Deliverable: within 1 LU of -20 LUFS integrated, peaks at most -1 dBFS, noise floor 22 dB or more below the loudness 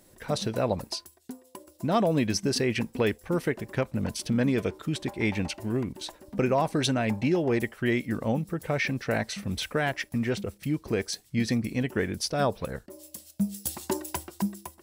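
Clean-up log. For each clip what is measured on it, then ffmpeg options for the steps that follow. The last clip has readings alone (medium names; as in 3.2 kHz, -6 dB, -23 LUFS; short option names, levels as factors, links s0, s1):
loudness -29.0 LUFS; peak level -13.0 dBFS; loudness target -20.0 LUFS
-> -af "volume=2.82"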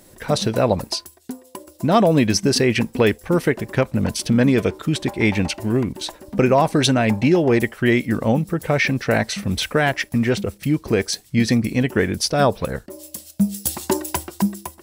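loudness -20.0 LUFS; peak level -4.0 dBFS; noise floor -50 dBFS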